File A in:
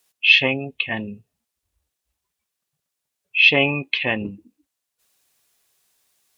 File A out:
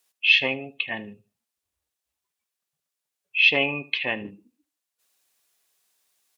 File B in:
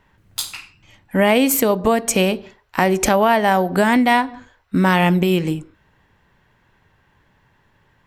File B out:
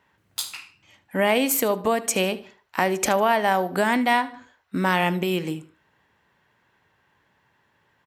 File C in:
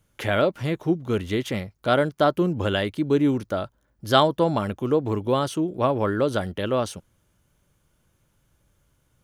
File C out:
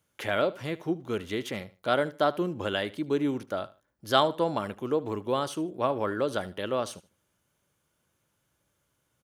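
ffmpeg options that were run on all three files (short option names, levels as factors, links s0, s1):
-filter_complex "[0:a]highpass=63,lowshelf=f=200:g=-10,asplit=2[s0][s1];[s1]aecho=0:1:76|152:0.112|0.0281[s2];[s0][s2]amix=inputs=2:normalize=0,volume=0.631"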